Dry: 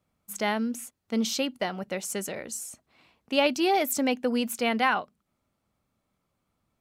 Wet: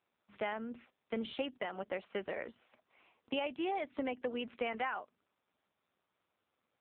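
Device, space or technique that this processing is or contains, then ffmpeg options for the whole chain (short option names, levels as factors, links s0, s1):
voicemail: -af "highpass=340,lowpass=3100,acompressor=threshold=0.0251:ratio=10" -ar 8000 -c:a libopencore_amrnb -b:a 5900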